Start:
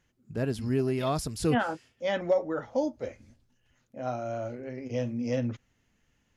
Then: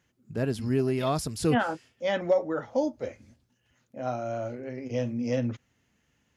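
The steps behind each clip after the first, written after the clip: HPF 69 Hz; gain +1.5 dB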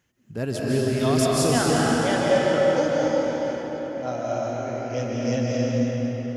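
high shelf 8800 Hz +5 dB; reverb RT60 5.1 s, pre-delay 0.11 s, DRR -5.5 dB; dynamic EQ 6500 Hz, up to +7 dB, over -50 dBFS, Q 0.86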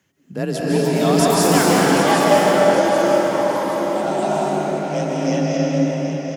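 echoes that change speed 0.461 s, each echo +6 st, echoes 2, each echo -6 dB; feedback echo 0.773 s, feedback 40%, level -9 dB; frequency shift +35 Hz; gain +4.5 dB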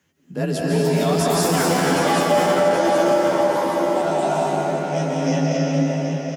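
limiter -9 dBFS, peak gain reduction 7.5 dB; doubler 12 ms -3 dB; gain -2 dB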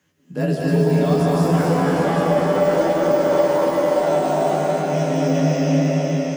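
de-esser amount 90%; on a send: thinning echo 0.293 s, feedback 76%, high-pass 160 Hz, level -9 dB; on the sum: shoebox room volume 99 m³, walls mixed, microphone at 0.46 m

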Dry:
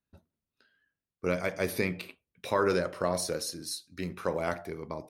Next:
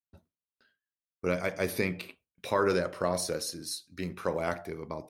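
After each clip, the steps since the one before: gate with hold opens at -55 dBFS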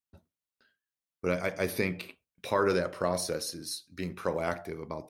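dynamic EQ 7500 Hz, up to -4 dB, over -56 dBFS, Q 4.1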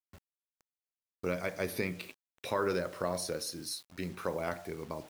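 in parallel at +0.5 dB: compressor 6:1, threshold -35 dBFS, peak gain reduction 12.5 dB; on the sum: bit-crush 8-bit; gain -7 dB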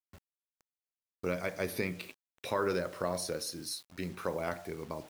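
nothing audible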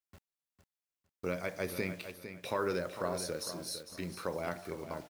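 feedback echo 0.455 s, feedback 26%, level -10.5 dB; gain -2 dB

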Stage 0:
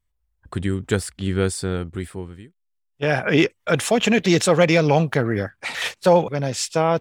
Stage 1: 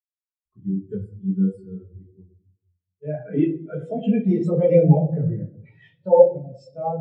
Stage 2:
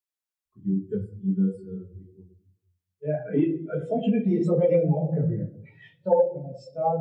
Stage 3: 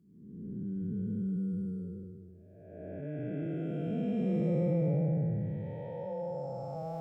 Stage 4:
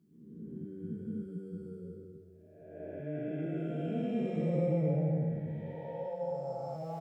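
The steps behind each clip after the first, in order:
reverb RT60 1.5 s, pre-delay 5 ms, DRR -4 dB; spectral expander 2.5:1; gain -3 dB
compressor 6:1, threshold -19 dBFS, peak gain reduction 12.5 dB; low shelf 150 Hz -5.5 dB; notches 60/120/180 Hz; gain +2.5 dB
time blur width 0.651 s; dynamic EQ 450 Hz, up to -7 dB, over -42 dBFS, Q 0.81
HPF 230 Hz 6 dB/oct; doubler 13 ms -3 dB

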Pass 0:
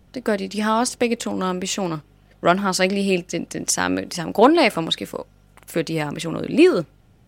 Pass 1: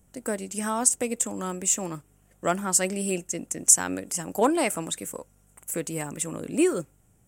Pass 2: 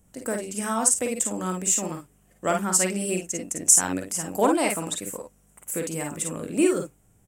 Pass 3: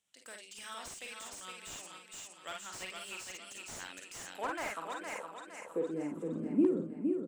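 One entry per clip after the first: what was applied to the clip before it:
resonant high shelf 5900 Hz +11 dB, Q 3; gain -8.5 dB
early reflections 44 ms -7.5 dB, 54 ms -6 dB
band-pass sweep 3500 Hz -> 240 Hz, 3.92–6.34; feedback echo 0.463 s, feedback 43%, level -5.5 dB; slew limiter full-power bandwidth 37 Hz; gain -1 dB

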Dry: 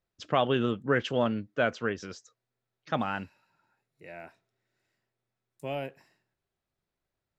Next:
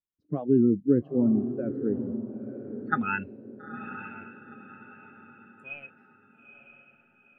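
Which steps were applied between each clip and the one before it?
spectral noise reduction 23 dB; low-pass sweep 300 Hz -> 2700 Hz, 2.48–3.08; diffused feedback echo 0.915 s, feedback 41%, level -9.5 dB; gain +3.5 dB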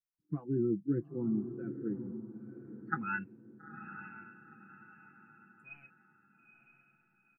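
comb 6 ms, depth 72%; dynamic EQ 380 Hz, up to +4 dB, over -38 dBFS, Q 1.7; fixed phaser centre 1400 Hz, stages 4; gain -7.5 dB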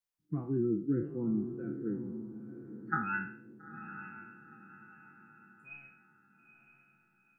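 spectral trails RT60 0.50 s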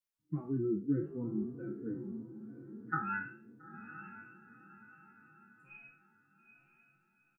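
endless flanger 3.4 ms +3 Hz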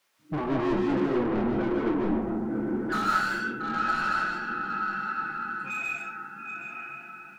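overdrive pedal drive 36 dB, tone 2000 Hz, clips at -21.5 dBFS; reverb RT60 0.45 s, pre-delay 0.105 s, DRR -0.5 dB

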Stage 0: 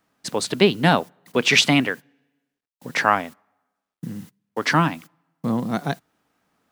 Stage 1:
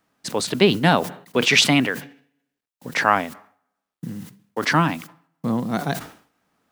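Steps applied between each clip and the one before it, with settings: sustainer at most 120 dB/s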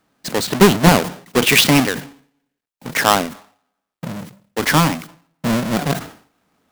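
half-waves squared off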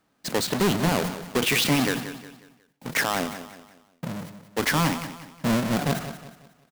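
limiter -11.5 dBFS, peak gain reduction 10 dB; on a send: feedback echo 0.181 s, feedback 39%, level -12 dB; on the sum: gain -4.5 dB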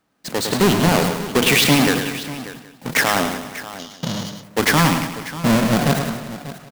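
tapped delay 0.106/0.591 s -7.5/-15 dB; spectral gain 3.79–4.43, 2800–7100 Hz +11 dB; AGC gain up to 7 dB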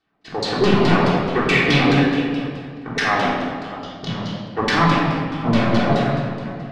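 LFO low-pass saw down 4.7 Hz 420–4900 Hz; shoebox room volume 1500 m³, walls mixed, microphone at 3.5 m; gain -8.5 dB

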